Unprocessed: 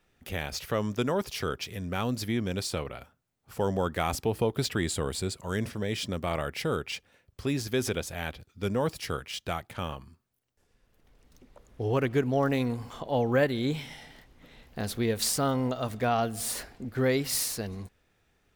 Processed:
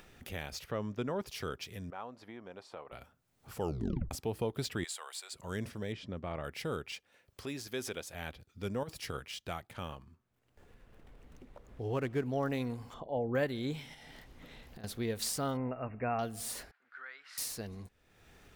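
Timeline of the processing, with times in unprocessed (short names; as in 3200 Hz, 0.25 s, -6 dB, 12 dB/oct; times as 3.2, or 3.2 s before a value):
0.64–1.26 LPF 2300 Hz 6 dB/oct
1.9–2.92 band-pass 860 Hz, Q 1.6
3.6 tape stop 0.51 s
4.84–5.33 HPF 770 Hz 24 dB/oct
5.92–6.44 tape spacing loss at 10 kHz 23 dB
6.94–8.14 low shelf 210 Hz -11.5 dB
8.83–9.34 negative-ratio compressor -31 dBFS, ratio -0.5
9.96–12.26 median filter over 9 samples
12.94–13.35 formant sharpening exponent 1.5
13.94–14.84 compressor, threshold -46 dBFS
15.57–16.19 brick-wall FIR low-pass 2800 Hz
16.71–17.38 ladder band-pass 1600 Hz, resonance 65%
whole clip: upward compressor, threshold -35 dBFS; gain -7.5 dB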